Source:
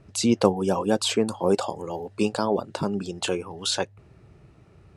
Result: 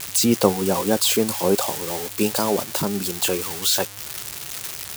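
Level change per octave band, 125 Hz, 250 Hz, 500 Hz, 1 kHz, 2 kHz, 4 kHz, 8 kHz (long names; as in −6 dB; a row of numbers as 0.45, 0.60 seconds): +2.0, +2.0, +2.0, +2.5, +5.0, +5.5, +10.0 decibels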